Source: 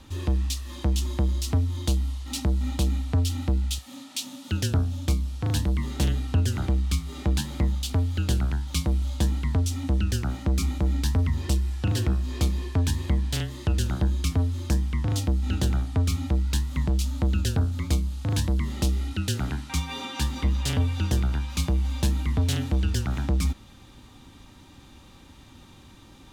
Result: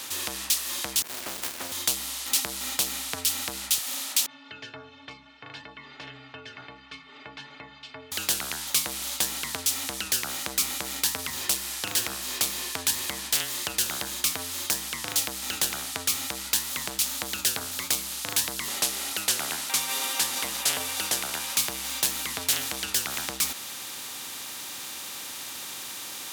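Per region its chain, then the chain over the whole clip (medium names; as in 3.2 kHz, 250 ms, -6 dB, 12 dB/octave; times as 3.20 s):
1.02–1.72 s: resonant low shelf 180 Hz -13 dB, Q 1.5 + phase dispersion lows, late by 77 ms, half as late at 2.7 kHz + sliding maximum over 65 samples
4.26–8.12 s: low-pass 2.5 kHz 24 dB/octave + inharmonic resonator 130 Hz, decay 0.38 s, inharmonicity 0.03
18.68–21.57 s: CVSD coder 64 kbps + high-pass 140 Hz 6 dB/octave + peaking EQ 670 Hz +8 dB 1.2 oct
whole clip: high-pass 390 Hz 6 dB/octave; tilt EQ +4.5 dB/octave; spectrum-flattening compressor 2:1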